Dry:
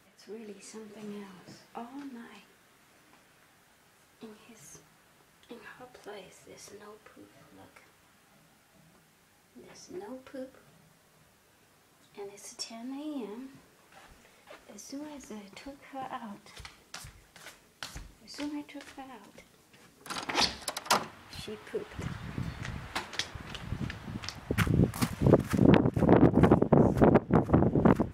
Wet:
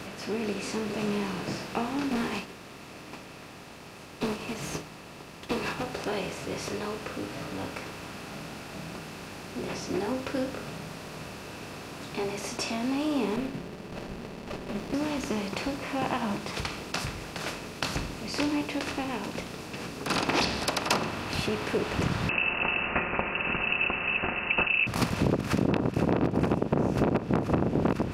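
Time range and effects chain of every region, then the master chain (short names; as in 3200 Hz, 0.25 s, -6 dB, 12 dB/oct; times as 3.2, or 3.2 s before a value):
2.11–5.83 notch 1500 Hz, Q 9.3 + sample leveller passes 3 + upward expander 2.5:1, over -50 dBFS
13.36–14.94 fixed phaser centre 2300 Hz, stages 4 + comb 5.1 ms, depth 73% + running maximum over 33 samples
22.29–24.87 comb 5.8 ms, depth 56% + inverted band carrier 2800 Hz
whole clip: per-bin compression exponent 0.6; high shelf 7800 Hz -6.5 dB; compressor, threshold -25 dBFS; gain +3 dB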